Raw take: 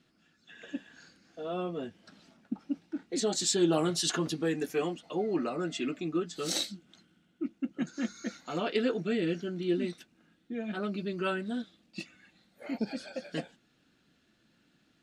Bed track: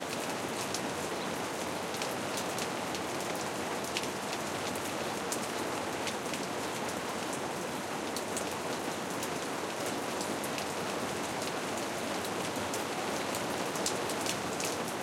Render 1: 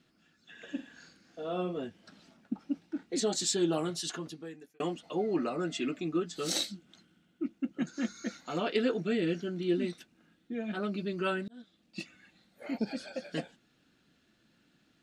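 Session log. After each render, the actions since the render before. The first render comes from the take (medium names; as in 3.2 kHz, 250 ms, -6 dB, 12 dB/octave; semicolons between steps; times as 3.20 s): 0.65–1.77 s: flutter echo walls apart 7.5 m, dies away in 0.26 s; 3.19–4.80 s: fade out; 11.48–12.00 s: fade in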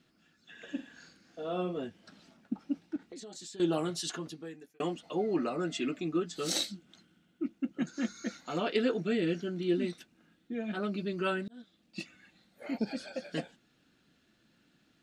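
2.96–3.60 s: compression 12:1, threshold -43 dBFS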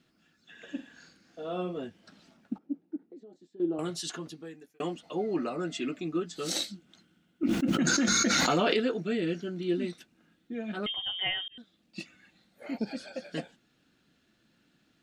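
2.58–3.79 s: band-pass filter 330 Hz, Q 1.6; 7.43–8.80 s: level flattener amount 100%; 10.86–11.58 s: frequency inversion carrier 3.4 kHz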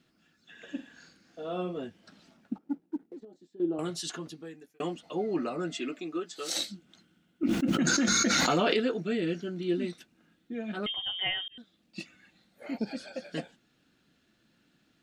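2.61–3.25 s: waveshaping leveller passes 1; 5.75–6.56 s: high-pass 230 Hz -> 510 Hz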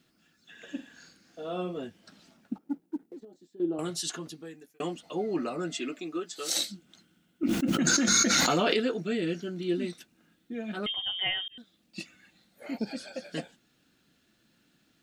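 treble shelf 6.5 kHz +8.5 dB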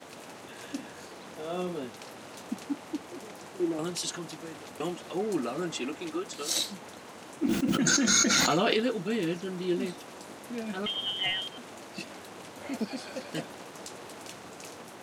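add bed track -10.5 dB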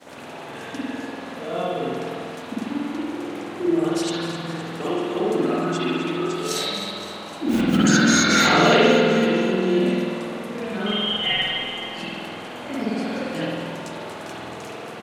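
on a send: feedback delay 258 ms, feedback 59%, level -12 dB; on the sum: spring tank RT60 1.7 s, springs 48 ms, chirp 25 ms, DRR -9.5 dB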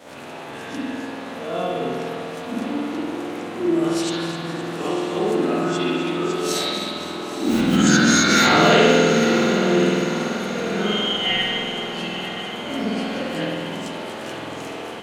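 reverse spectral sustain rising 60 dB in 0.30 s; echo that smears into a reverb 962 ms, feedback 52%, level -10.5 dB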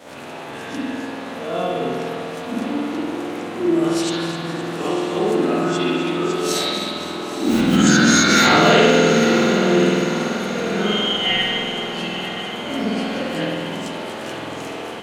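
trim +2 dB; peak limiter -3 dBFS, peak gain reduction 2.5 dB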